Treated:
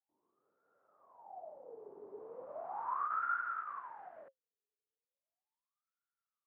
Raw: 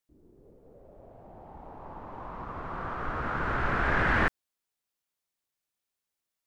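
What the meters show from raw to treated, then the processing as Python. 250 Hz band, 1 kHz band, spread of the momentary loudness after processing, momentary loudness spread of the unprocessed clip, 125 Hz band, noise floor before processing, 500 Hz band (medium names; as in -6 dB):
under -25 dB, -6.5 dB, 17 LU, 21 LU, under -40 dB, under -85 dBFS, -11.5 dB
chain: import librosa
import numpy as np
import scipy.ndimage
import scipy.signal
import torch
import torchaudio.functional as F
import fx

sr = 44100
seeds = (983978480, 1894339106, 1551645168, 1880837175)

y = fx.over_compress(x, sr, threshold_db=-34.0, ratio=-1.0)
y = fx.wah_lfo(y, sr, hz=0.37, low_hz=410.0, high_hz=1400.0, q=21.0)
y = fx.bandpass_edges(y, sr, low_hz=110.0, high_hz=5100.0)
y = y * 10.0 ** (6.5 / 20.0)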